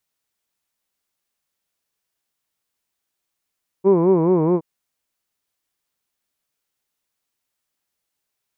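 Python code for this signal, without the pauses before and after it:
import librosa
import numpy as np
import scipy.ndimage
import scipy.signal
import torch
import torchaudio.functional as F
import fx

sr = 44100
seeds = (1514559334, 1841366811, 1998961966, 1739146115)

y = fx.formant_vowel(sr, seeds[0], length_s=0.77, hz=184.0, glide_st=-2.0, vibrato_hz=4.7, vibrato_st=1.5, f1_hz=400.0, f2_hz=1000.0, f3_hz=2300.0)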